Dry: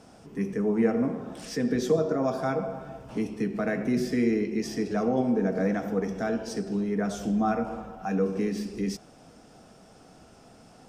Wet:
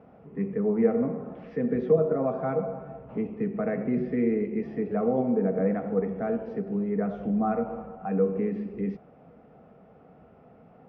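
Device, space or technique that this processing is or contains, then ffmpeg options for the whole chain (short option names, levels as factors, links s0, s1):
bass cabinet: -af "highpass=60,equalizer=f=110:t=q:w=4:g=-4,equalizer=f=160:t=q:w=4:g=3,equalizer=f=320:t=q:w=4:g=-6,equalizer=f=470:t=q:w=4:g=4,equalizer=f=960:t=q:w=4:g=-4,equalizer=f=1600:t=q:w=4:g=-8,lowpass=f=2000:w=0.5412,lowpass=f=2000:w=1.3066"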